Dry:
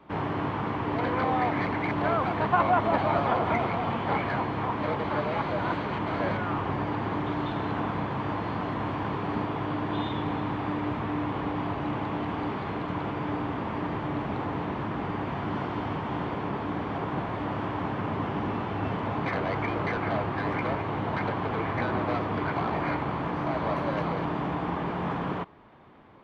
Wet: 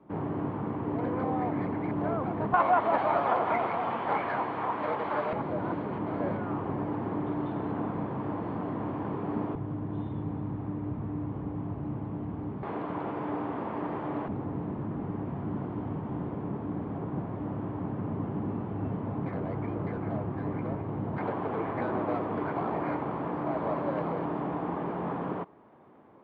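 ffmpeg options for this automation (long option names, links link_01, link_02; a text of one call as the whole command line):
ffmpeg -i in.wav -af "asetnsamples=nb_out_samples=441:pad=0,asendcmd='2.54 bandpass f 840;5.33 bandpass f 290;9.55 bandpass f 110;12.63 bandpass f 500;14.28 bandpass f 170;21.18 bandpass f 420',bandpass=frequency=240:width_type=q:width=0.59:csg=0" out.wav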